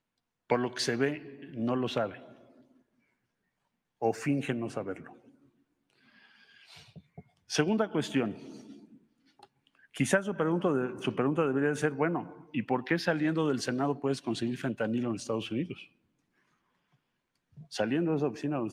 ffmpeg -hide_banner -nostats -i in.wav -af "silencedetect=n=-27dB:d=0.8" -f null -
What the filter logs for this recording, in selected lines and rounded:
silence_start: 2.06
silence_end: 4.02 | silence_duration: 1.96
silence_start: 4.92
silence_end: 7.53 | silence_duration: 2.61
silence_start: 8.28
silence_end: 10.00 | silence_duration: 1.72
silence_start: 15.72
silence_end: 17.76 | silence_duration: 2.04